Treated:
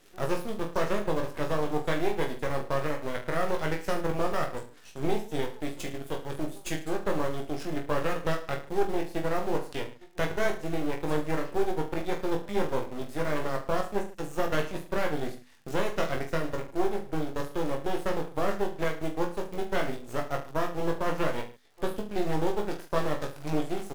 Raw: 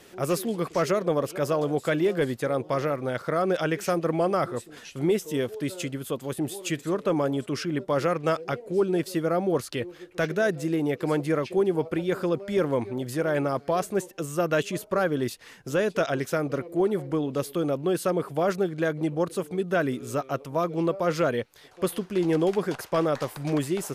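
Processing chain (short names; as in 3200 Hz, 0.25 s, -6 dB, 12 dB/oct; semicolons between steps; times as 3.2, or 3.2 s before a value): crackle 91/s -37 dBFS; transient shaper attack +3 dB, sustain -8 dB; in parallel at -9.5 dB: bit-crush 5-bit; on the sum: notches 50/100/150/200/250 Hz; half-wave rectifier; on a send: reverse bouncing-ball echo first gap 20 ms, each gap 1.2×, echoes 5; on the sum: gain -6 dB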